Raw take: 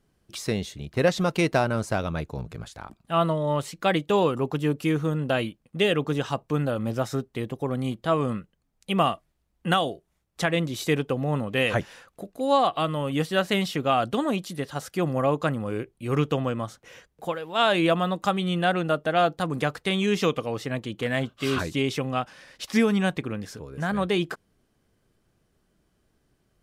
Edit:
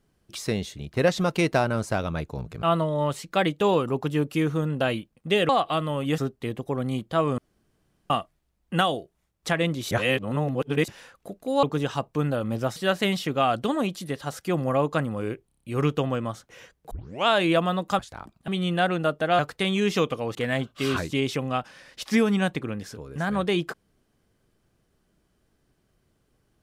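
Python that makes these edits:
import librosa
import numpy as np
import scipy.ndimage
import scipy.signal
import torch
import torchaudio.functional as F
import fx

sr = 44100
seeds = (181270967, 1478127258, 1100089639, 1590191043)

y = fx.edit(x, sr, fx.move(start_s=2.63, length_s=0.49, to_s=18.33),
    fx.swap(start_s=5.98, length_s=1.13, other_s=12.56, other_length_s=0.69),
    fx.room_tone_fill(start_s=8.31, length_s=0.72),
    fx.reverse_span(start_s=10.84, length_s=0.97),
    fx.stutter(start_s=15.97, slice_s=0.03, count=6),
    fx.tape_start(start_s=17.25, length_s=0.36),
    fx.cut(start_s=19.24, length_s=0.41),
    fx.cut(start_s=20.61, length_s=0.36), tone=tone)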